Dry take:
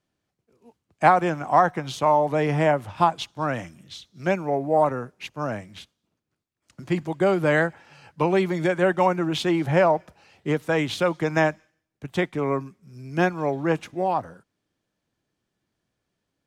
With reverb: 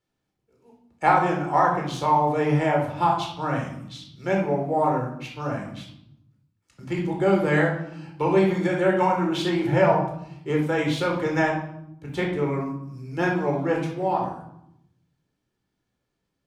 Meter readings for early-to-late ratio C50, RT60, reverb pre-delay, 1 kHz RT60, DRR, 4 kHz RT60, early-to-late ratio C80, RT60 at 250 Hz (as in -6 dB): 4.5 dB, 0.80 s, 16 ms, 0.75 s, -0.5 dB, 0.55 s, 9.0 dB, 1.2 s